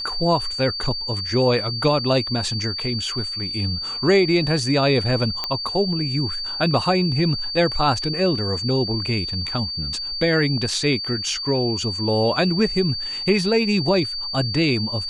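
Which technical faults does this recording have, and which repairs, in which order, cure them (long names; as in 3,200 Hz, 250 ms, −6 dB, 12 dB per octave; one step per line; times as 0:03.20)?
whistle 4,600 Hz −26 dBFS
0:05.44: click −10 dBFS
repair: click removal
notch filter 4,600 Hz, Q 30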